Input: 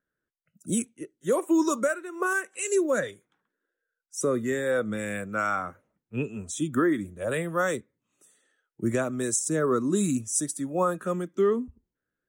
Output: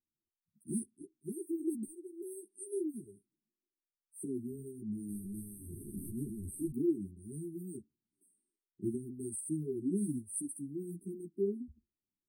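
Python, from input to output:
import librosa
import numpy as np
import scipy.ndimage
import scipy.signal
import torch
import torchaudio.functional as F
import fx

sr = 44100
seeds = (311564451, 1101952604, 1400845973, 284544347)

y = fx.delta_mod(x, sr, bps=64000, step_db=-26.0, at=(5.09, 6.71))
y = fx.brickwall_bandstop(y, sr, low_hz=410.0, high_hz=8200.0)
y = fx.ensemble(y, sr)
y = y * 10.0 ** (-5.5 / 20.0)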